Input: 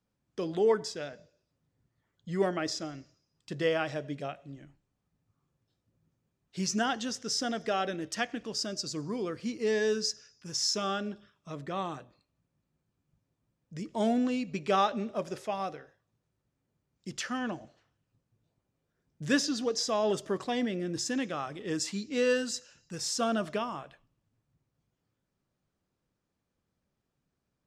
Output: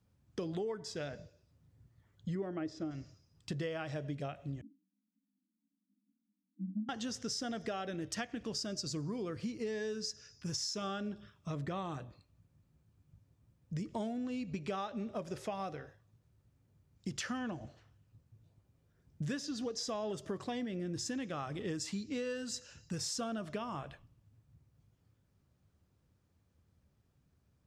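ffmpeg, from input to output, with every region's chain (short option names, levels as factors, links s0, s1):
-filter_complex "[0:a]asettb=1/sr,asplit=3[s0][s1][s2];[s0]atrim=end=2.354[s3];[s1]atrim=start=2.35:end=2.91,asetpts=PTS-STARTPTS,afade=t=in:d=0.004:c=qsin,afade=t=out:st=0.556:d=0.004:c=qsin,lowpass=f=1700:p=1,equalizer=f=310:t=o:w=0.46:g=8[s4];[s2]atrim=start=2.906[s5];[s3][s4]acrossfade=d=0.004:c1=hsin:c2=qsin[s6];[s6][s5]acrossfade=d=0.004:c1=qsin:c2=hsin,asettb=1/sr,asplit=3[s7][s8][s9];[s7]atrim=end=4.614[s10];[s8]atrim=start=4.61:end=6.89,asetpts=PTS-STARTPTS,afade=t=in:d=0.004:c=qsin,afade=t=out:st=2.276:d=0.004:c=qsin,asuperpass=centerf=240:order=20:qfactor=1.9,flanger=delay=18:depth=2.1:speed=1.9[s11];[s9]atrim=start=6.886[s12];[s10][s11]acrossfade=d=0.004:c1=hsin:c2=qsin[s13];[s13][s12]acrossfade=d=0.004:c1=qsin:c2=hsin,equalizer=f=82:t=o:w=1.5:g=14.5,acompressor=threshold=0.0126:ratio=10,volume=1.33"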